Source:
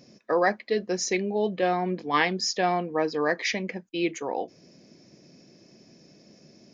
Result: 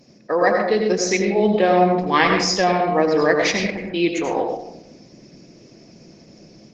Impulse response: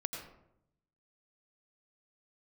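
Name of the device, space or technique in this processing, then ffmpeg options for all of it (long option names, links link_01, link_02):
speakerphone in a meeting room: -filter_complex "[1:a]atrim=start_sample=2205[link_01];[0:a][link_01]afir=irnorm=-1:irlink=0,dynaudnorm=framelen=370:gausssize=3:maxgain=4dB,volume=4dB" -ar 48000 -c:a libopus -b:a 16k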